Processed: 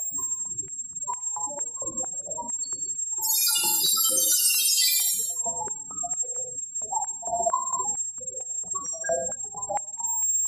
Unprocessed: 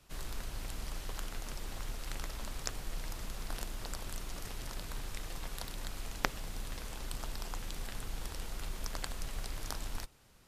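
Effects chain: 3.22–5.15 s: tilt EQ +4.5 dB/octave; whistle 7.5 kHz -55 dBFS; half-wave rectifier; loudest bins only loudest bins 8; gated-style reverb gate 310 ms falling, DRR -0.5 dB; loudness maximiser +33.5 dB; step-sequenced high-pass 4.4 Hz 690–2500 Hz

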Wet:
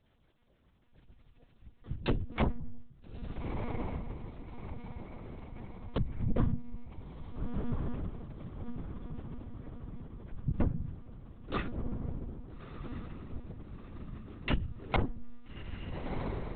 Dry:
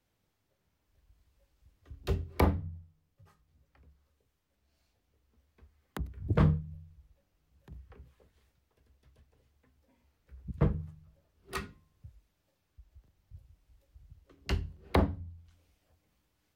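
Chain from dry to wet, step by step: LFO notch sine 6.6 Hz 200–2500 Hz; on a send: echo that smears into a reverb 1314 ms, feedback 52%, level -14.5 dB; on the sum: compression 4:1, threshold -38 dBFS, peak gain reduction 15.5 dB; peaking EQ 140 Hz +4.5 dB 2.8 oct; monotone LPC vocoder at 8 kHz 240 Hz; trim +7.5 dB

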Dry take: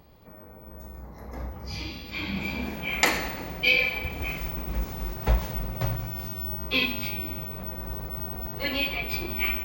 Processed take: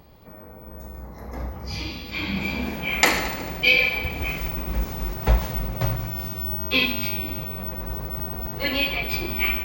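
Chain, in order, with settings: thinning echo 74 ms, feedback 71%, level -15 dB; trim +4 dB

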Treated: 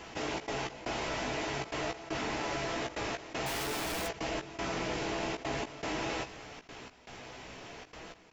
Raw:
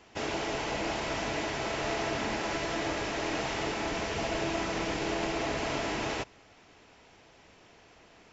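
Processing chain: 3.46–4.07 s: one-bit comparator; flange 0.49 Hz, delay 5.9 ms, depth 2.6 ms, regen +76%; trance gate "xxxx.xx..xxxx" 157 bpm -24 dB; doubling 16 ms -8 dB; level flattener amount 50%

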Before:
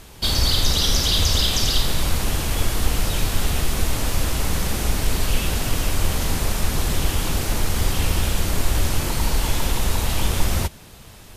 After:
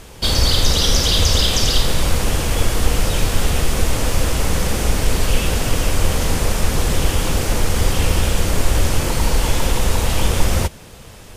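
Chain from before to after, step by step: graphic EQ with 31 bands 500 Hz +6 dB, 4 kHz -3 dB, 12.5 kHz -6 dB; trim +4 dB

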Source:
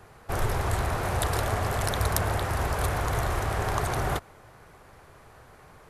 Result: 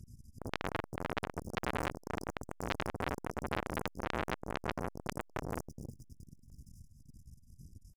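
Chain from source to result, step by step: tracing distortion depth 0.36 ms; FFT band-reject 250–4800 Hz; tempo 0.74×; treble shelf 7 kHz -5.5 dB; hum notches 50/100/150/200 Hz; on a send: multi-head delay 105 ms, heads first and third, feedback 67%, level -17.5 dB; on the sum: phaser 1.7 Hz, delay 1.4 ms, feedback 43%; square tremolo 2 Hz, depth 60%, duty 80%; comb 3.2 ms, depth 31%; transformer saturation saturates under 3.5 kHz; trim +3 dB

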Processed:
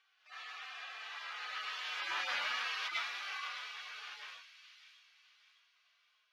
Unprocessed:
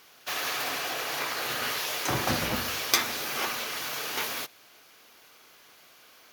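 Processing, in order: harmonic-percussive separation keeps harmonic; Doppler pass-by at 2.49 s, 7 m/s, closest 4 m; Butterworth band-pass 2 kHz, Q 0.72; on a send: feedback echo behind a high-pass 606 ms, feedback 41%, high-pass 2.8 kHz, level -8.5 dB; on the sum: trim +1 dB

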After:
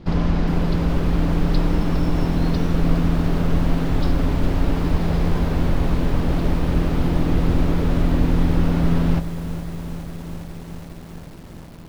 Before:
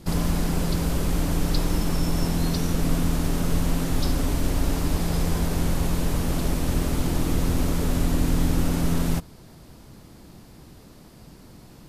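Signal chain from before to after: distance through air 250 m; bit-crushed delay 411 ms, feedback 80%, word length 7-bit, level -12.5 dB; trim +4.5 dB

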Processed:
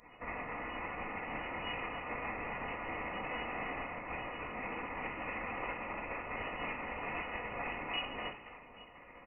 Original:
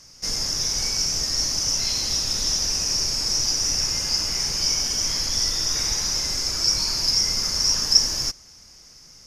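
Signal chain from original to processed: spectral gate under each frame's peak -25 dB weak; compression 3:1, threshold -53 dBFS, peak gain reduction 16 dB; harmony voices -12 st -15 dB, +4 st 0 dB; static phaser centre 880 Hz, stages 8; on a send: echo whose repeats swap between lows and highs 277 ms, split 1.9 kHz, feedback 54%, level -9.5 dB; on the sum: simulated room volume 760 m³, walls furnished, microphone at 1.8 m; frequency inversion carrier 2.9 kHz; trim +13.5 dB

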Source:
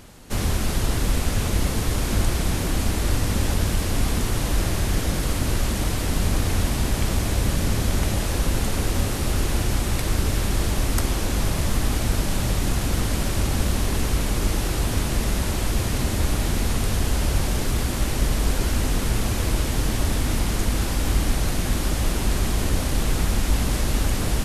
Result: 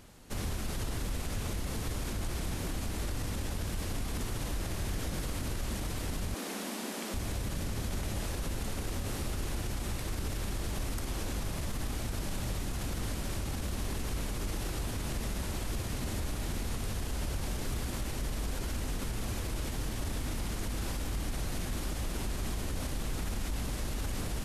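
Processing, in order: 6.34–7.14 s: elliptic high-pass 200 Hz, stop band 40 dB; peak limiter -17 dBFS, peak gain reduction 8.5 dB; trim -9 dB

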